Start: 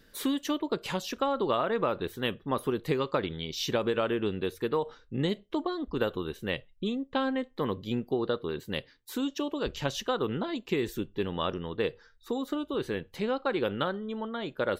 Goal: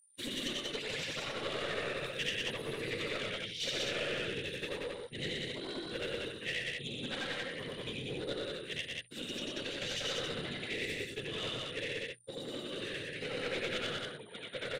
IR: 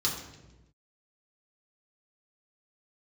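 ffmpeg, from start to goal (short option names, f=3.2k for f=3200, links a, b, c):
-filter_complex "[0:a]afftfilt=real='re':imag='-im':win_size=8192:overlap=0.75,agate=range=-45dB:threshold=-38dB:ratio=16:detection=peak,aeval=exprs='val(0)+0.000631*sin(2*PI*9200*n/s)':c=same,afftfilt=real='hypot(re,im)*cos(2*PI*random(0))':imag='hypot(re,im)*sin(2*PI*random(1))':win_size=512:overlap=0.75,equalizer=f=2.5k:t=o:w=2:g=10,bandreject=f=60:t=h:w=6,bandreject=f=120:t=h:w=6,bandreject=f=180:t=h:w=6,acrossover=split=6800[a][b];[a]aeval=exprs='clip(val(0),-1,0.0112)':c=same[c];[c][b]amix=inputs=2:normalize=0,equalizer=f=125:t=o:w=1:g=11,equalizer=f=500:t=o:w=1:g=9,equalizer=f=1k:t=o:w=1:g=-8,equalizer=f=2k:t=o:w=1:g=11,equalizer=f=4k:t=o:w=1:g=7,equalizer=f=8k:t=o:w=1:g=11,asplit=2[d][e];[e]aecho=0:1:119.5|186.6:0.562|0.708[f];[d][f]amix=inputs=2:normalize=0,volume=-7.5dB"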